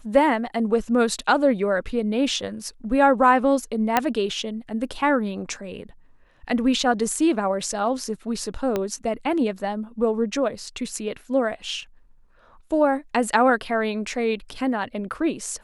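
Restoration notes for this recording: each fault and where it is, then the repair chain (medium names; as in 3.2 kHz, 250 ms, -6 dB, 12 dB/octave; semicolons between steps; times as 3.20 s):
3.97 s: pop -4 dBFS
8.76 s: pop -11 dBFS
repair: de-click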